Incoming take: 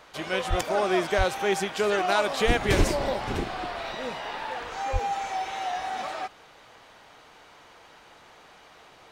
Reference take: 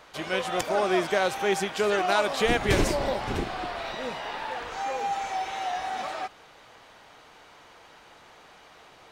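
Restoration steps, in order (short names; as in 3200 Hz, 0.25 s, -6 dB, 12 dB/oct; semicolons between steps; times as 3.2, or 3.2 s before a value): clip repair -9.5 dBFS; de-plosive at 0.49/1.17/2.46/2.77/4.92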